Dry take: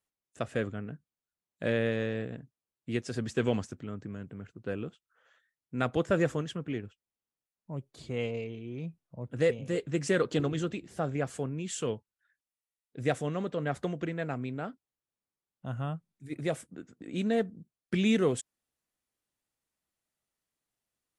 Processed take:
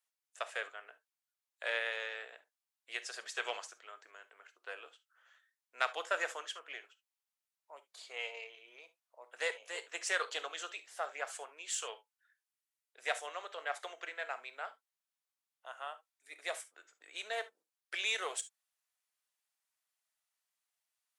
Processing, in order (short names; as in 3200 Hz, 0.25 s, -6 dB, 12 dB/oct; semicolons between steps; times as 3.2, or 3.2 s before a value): added harmonics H 3 -21 dB, 8 -38 dB, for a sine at -12.5 dBFS; Bessel high-pass 1000 Hz, order 6; non-linear reverb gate 90 ms flat, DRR 11.5 dB; gain +3.5 dB